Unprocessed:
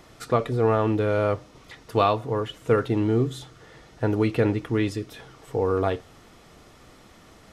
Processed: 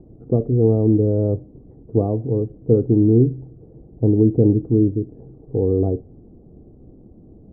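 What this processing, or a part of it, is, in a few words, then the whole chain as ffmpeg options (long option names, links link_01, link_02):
under water: -af "lowpass=frequency=400:width=0.5412,lowpass=frequency=400:width=1.3066,equalizer=frequency=780:width_type=o:width=0.31:gain=6,volume=9dB"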